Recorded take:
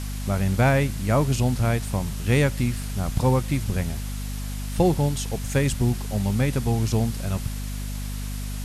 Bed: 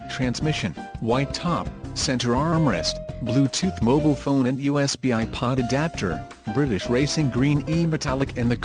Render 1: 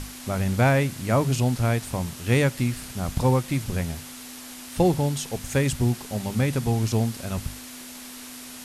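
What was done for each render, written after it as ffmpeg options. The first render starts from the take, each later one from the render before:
-af "bandreject=f=50:t=h:w=6,bandreject=f=100:t=h:w=6,bandreject=f=150:t=h:w=6,bandreject=f=200:t=h:w=6"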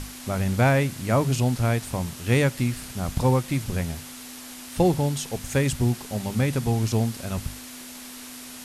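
-af anull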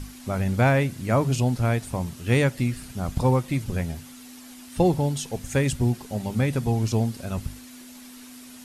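-af "afftdn=nr=8:nf=-41"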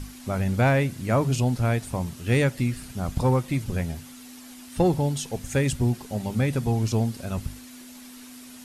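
-af "asoftclip=type=tanh:threshold=-9dB"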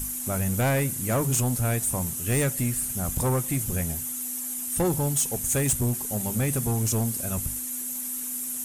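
-af "aexciter=amount=4.4:drive=9.2:freq=6.6k,asoftclip=type=tanh:threshold=-18.5dB"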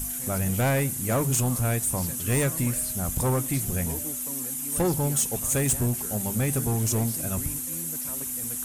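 -filter_complex "[1:a]volume=-20dB[a];[0:a][a]amix=inputs=2:normalize=0"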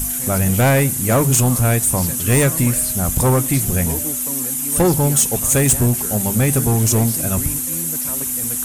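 -af "volume=9.5dB"

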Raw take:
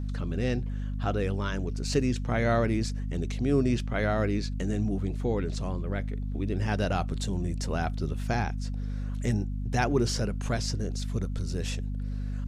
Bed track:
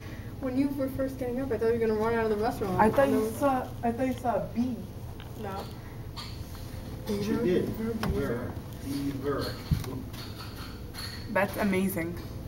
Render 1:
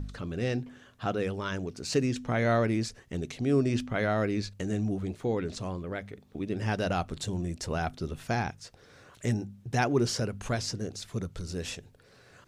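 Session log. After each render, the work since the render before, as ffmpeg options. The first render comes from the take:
-af "bandreject=f=50:t=h:w=4,bandreject=f=100:t=h:w=4,bandreject=f=150:t=h:w=4,bandreject=f=200:t=h:w=4,bandreject=f=250:t=h:w=4"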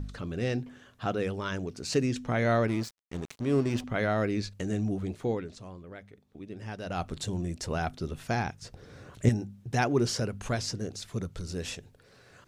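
-filter_complex "[0:a]asettb=1/sr,asplit=3[a][b][c];[a]atrim=end=2.684[d];[b]atrim=start=2.68:end=3.84,asetpts=PTS-STARTPTS,afade=t=in:d=0.004:c=qsin,afade=t=out:st=1.156:d=0.004:c=qsin,aeval=exprs='sgn(val(0))*max(abs(val(0))-0.00944,0)':c=same[e];[c]atrim=start=3.836[f];[d][e]acrossfade=d=0.004:c1=hsin:c2=qsin[g];[g][f]acrossfade=d=0.004:c1=qsin:c2=hsin,asettb=1/sr,asplit=3[h][i][j];[h]atrim=end=8.624[k];[i]atrim=start=8.62:end=9.29,asetpts=PTS-STARTPTS,afade=t=in:d=0.004:c=qsin,afade=t=out:st=0.666:d=0.004:c=qsin,lowshelf=f=460:g=11.5[l];[j]atrim=start=9.286[m];[k][l]acrossfade=d=0.004:c1=hsin:c2=qsin[n];[n][m]acrossfade=d=0.004:c1=qsin:c2=hsin,asplit=3[o][p][q];[o]atrim=end=5.57,asetpts=PTS-STARTPTS,afade=t=out:st=5.31:d=0.26:c=qua:silence=0.334965[r];[p]atrim=start=5.57:end=6.78,asetpts=PTS-STARTPTS,volume=-9.5dB[s];[q]atrim=start=6.78,asetpts=PTS-STARTPTS,afade=t=in:d=0.26:c=qua:silence=0.334965[t];[r][s][t]concat=n=3:v=0:a=1"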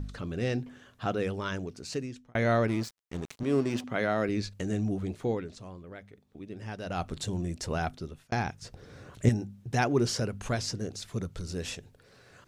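-filter_complex "[0:a]asettb=1/sr,asplit=3[a][b][c];[a]atrim=end=3.434[d];[b]atrim=start=3.43:end=4.29,asetpts=PTS-STARTPTS,afade=t=in:d=0.004:c=qsin,afade=t=out:st=0.856:d=0.004:c=qsin,highpass=150[e];[c]atrim=start=4.286[f];[d][e]acrossfade=d=0.004:c1=hsin:c2=qsin[g];[g][f]acrossfade=d=0.004:c1=qsin:c2=hsin,asplit=3[h][i][j];[h]atrim=end=2.35,asetpts=PTS-STARTPTS,afade=t=out:st=1.48:d=0.87[k];[i]atrim=start=2.35:end=8.32,asetpts=PTS-STARTPTS,afade=t=in:d=0.004:c=hsin,afade=t=out:st=5.5:d=0.47[l];[j]atrim=start=8.32,asetpts=PTS-STARTPTS,afade=t=in:d=0.004:c=hsin[m];[k][l][m]concat=n=3:v=0:a=1"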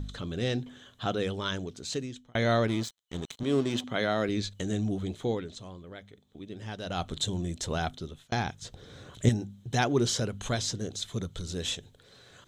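-af "superequalizer=13b=3.16:15b=1.78"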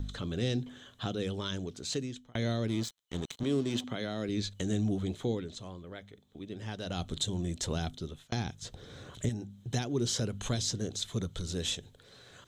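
-filter_complex "[0:a]alimiter=limit=-19dB:level=0:latency=1:release=384,acrossover=split=430|3000[a][b][c];[b]acompressor=threshold=-41dB:ratio=6[d];[a][d][c]amix=inputs=3:normalize=0"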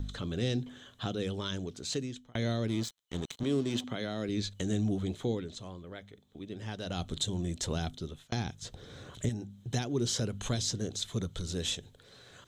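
-af anull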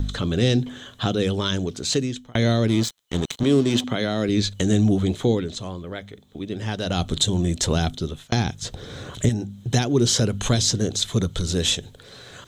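-af "volume=12dB"

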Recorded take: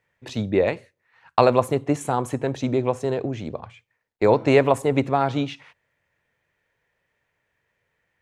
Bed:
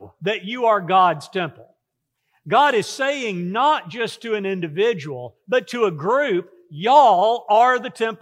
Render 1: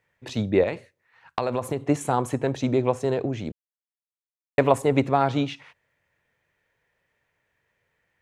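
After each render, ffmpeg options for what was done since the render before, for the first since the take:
-filter_complex "[0:a]asettb=1/sr,asplit=3[a][b][c];[a]atrim=end=0.634[d];[b]atrim=start=0.63:end=1.83,asetpts=PTS-STARTPTS,afade=t=in:d=0.004:c=qsin,afade=t=out:st=1.196:d=0.004:c=qsin,acompressor=threshold=-21dB:ratio=6:attack=3.2:release=140:knee=1:detection=peak[e];[c]atrim=start=1.826[f];[d][e]acrossfade=d=0.004:c1=hsin:c2=qsin[g];[g][f]acrossfade=d=0.004:c1=qsin:c2=hsin,asplit=3[h][i][j];[h]atrim=end=3.52,asetpts=PTS-STARTPTS,afade=t=out:st=3.516:d=0.004:c=hsin[k];[i]atrim=start=3.52:end=4.58,asetpts=PTS-STARTPTS,volume=0[l];[j]atrim=start=4.58,asetpts=PTS-STARTPTS,afade=t=in:d=0.004:c=hsin[m];[k][l][m]concat=n=3:v=0:a=1"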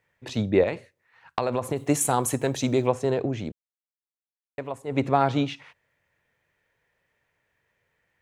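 -filter_complex "[0:a]asplit=3[a][b][c];[a]afade=t=out:st=1.75:d=0.02[d];[b]aemphasis=mode=production:type=75fm,afade=t=in:st=1.75:d=0.02,afade=t=out:st=2.87:d=0.02[e];[c]afade=t=in:st=2.87:d=0.02[f];[d][e][f]amix=inputs=3:normalize=0,asplit=3[g][h][i];[g]atrim=end=3.65,asetpts=PTS-STARTPTS,afade=t=out:st=3.44:d=0.21:silence=0.188365[j];[h]atrim=start=3.65:end=4.86,asetpts=PTS-STARTPTS,volume=-14.5dB[k];[i]atrim=start=4.86,asetpts=PTS-STARTPTS,afade=t=in:d=0.21:silence=0.188365[l];[j][k][l]concat=n=3:v=0:a=1"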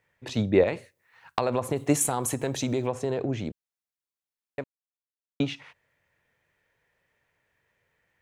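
-filter_complex "[0:a]asettb=1/sr,asplit=3[a][b][c];[a]atrim=end=0.754[d];[b]atrim=start=0.75:end=1.4,asetpts=PTS-STARTPTS,afade=t=in:d=0.004:c=qsin,afade=t=out:st=0.646:d=0.004:c=qsin,highshelf=f=7k:g=10.5[e];[c]atrim=start=1.396[f];[d][e]acrossfade=d=0.004:c1=hsin:c2=qsin[g];[g][f]acrossfade=d=0.004:c1=qsin:c2=hsin,asettb=1/sr,asplit=3[h][i][j];[h]atrim=end=2.064[k];[i]atrim=start=2.06:end=3.29,asetpts=PTS-STARTPTS,afade=t=in:d=0.004:c=qsin,afade=t=out:st=1.226:d=0.004:c=qsin,acompressor=threshold=-24dB:ratio=2.5:attack=3.2:release=140:knee=1:detection=peak[l];[j]atrim=start=3.286[m];[k][l]acrossfade=d=0.004:c1=hsin:c2=qsin[n];[n][m]acrossfade=d=0.004:c1=qsin:c2=hsin,asplit=3[o][p][q];[o]atrim=end=4.64,asetpts=PTS-STARTPTS,afade=t=out:st=4.636:d=0.004:c=hsin[r];[p]atrim=start=4.64:end=5.4,asetpts=PTS-STARTPTS,volume=0[s];[q]atrim=start=5.4,asetpts=PTS-STARTPTS,afade=t=in:d=0.004:c=hsin[t];[r][s][t]concat=n=3:v=0:a=1"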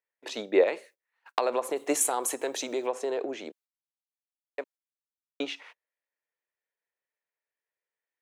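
-af "agate=range=-21dB:threshold=-51dB:ratio=16:detection=peak,highpass=f=350:w=0.5412,highpass=f=350:w=1.3066"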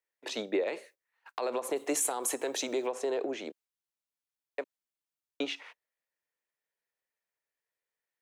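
-filter_complex "[0:a]alimiter=limit=-19.5dB:level=0:latency=1:release=65,acrossover=split=370|3000[a][b][c];[b]acompressor=threshold=-31dB:ratio=6[d];[a][d][c]amix=inputs=3:normalize=0"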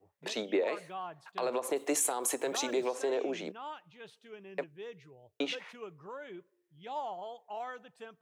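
-filter_complex "[1:a]volume=-26dB[a];[0:a][a]amix=inputs=2:normalize=0"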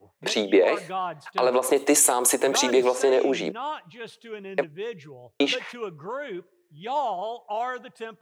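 -af "volume=11.5dB"

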